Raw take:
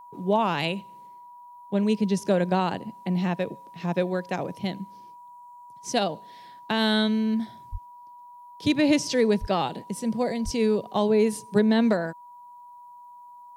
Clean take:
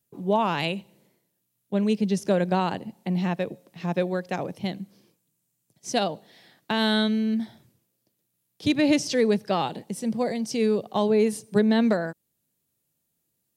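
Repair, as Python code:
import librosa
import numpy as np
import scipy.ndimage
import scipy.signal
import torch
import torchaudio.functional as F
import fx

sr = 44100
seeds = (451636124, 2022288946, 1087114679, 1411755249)

y = fx.notch(x, sr, hz=970.0, q=30.0)
y = fx.fix_deplosive(y, sr, at_s=(7.71, 9.4, 10.44))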